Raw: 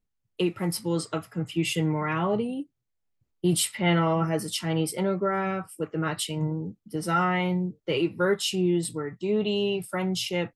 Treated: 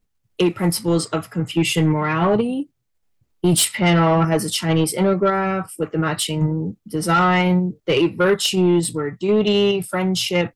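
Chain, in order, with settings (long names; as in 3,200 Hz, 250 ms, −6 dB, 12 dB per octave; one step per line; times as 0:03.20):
in parallel at −0.5 dB: output level in coarse steps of 13 dB
on the sum: soft clipping −15.5 dBFS, distortion −16 dB
level +6 dB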